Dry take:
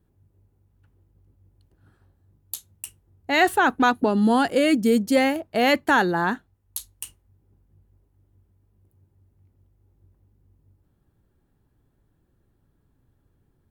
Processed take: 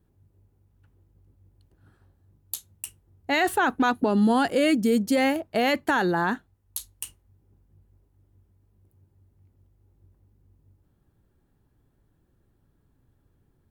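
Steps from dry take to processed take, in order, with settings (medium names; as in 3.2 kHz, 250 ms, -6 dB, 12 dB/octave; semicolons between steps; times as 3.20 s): peak limiter -14 dBFS, peak gain reduction 6 dB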